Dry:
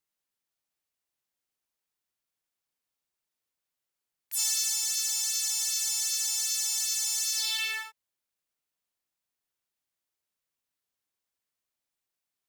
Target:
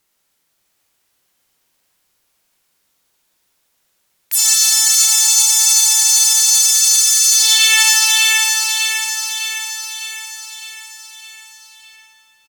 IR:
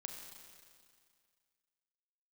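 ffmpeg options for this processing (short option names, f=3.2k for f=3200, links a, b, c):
-filter_complex "[0:a]asplit=3[a][b][c];[a]afade=t=out:st=4.42:d=0.02[d];[b]lowshelf=f=730:t=q:w=3:g=-12.5,afade=t=in:st=4.42:d=0.02,afade=t=out:st=5.16:d=0.02[e];[c]afade=t=in:st=5.16:d=0.02[f];[d][e][f]amix=inputs=3:normalize=0,acontrast=83,aecho=1:1:606|1212|1818|2424|3030|3636|4242:0.501|0.286|0.163|0.0928|0.0529|0.0302|0.0172[g];[1:a]atrim=start_sample=2205,asetrate=40131,aresample=44100[h];[g][h]afir=irnorm=-1:irlink=0,alimiter=level_in=17.5dB:limit=-1dB:release=50:level=0:latency=1,volume=-1dB"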